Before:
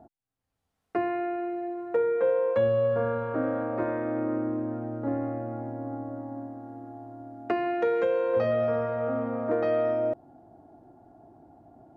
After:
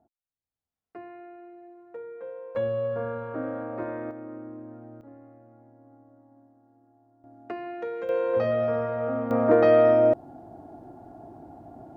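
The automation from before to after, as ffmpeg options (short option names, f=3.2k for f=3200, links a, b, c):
-af "asetnsamples=n=441:p=0,asendcmd='2.55 volume volume -4dB;4.11 volume volume -11dB;5.01 volume volume -19.5dB;7.24 volume volume -8dB;8.09 volume volume 0.5dB;9.31 volume volume 8dB',volume=-15dB"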